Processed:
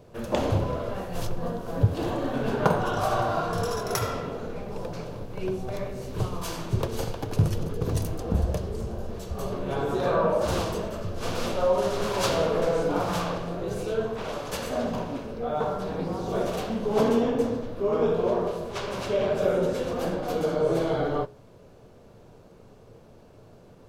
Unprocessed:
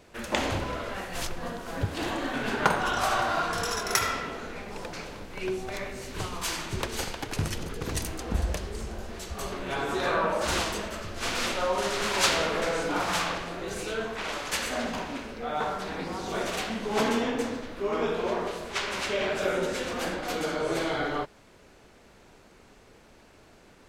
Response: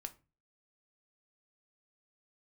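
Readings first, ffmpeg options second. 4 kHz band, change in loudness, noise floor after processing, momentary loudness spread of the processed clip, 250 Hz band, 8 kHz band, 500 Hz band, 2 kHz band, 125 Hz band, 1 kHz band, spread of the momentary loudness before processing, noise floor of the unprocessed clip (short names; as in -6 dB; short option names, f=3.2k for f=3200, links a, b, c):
-6.0 dB, +2.0 dB, -51 dBFS, 9 LU, +4.0 dB, -6.0 dB, +5.0 dB, -7.0 dB, +8.0 dB, -0.5 dB, 10 LU, -55 dBFS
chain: -filter_complex "[0:a]equalizer=f=125:t=o:w=1:g=11,equalizer=f=500:t=o:w=1:g=5,equalizer=f=2k:t=o:w=1:g=-10,equalizer=f=4k:t=o:w=1:g=-3,equalizer=f=8k:t=o:w=1:g=-7,asplit=2[a][b];[1:a]atrim=start_sample=2205,asetrate=66150,aresample=44100[c];[b][c]afir=irnorm=-1:irlink=0,volume=9dB[d];[a][d]amix=inputs=2:normalize=0,volume=-6dB"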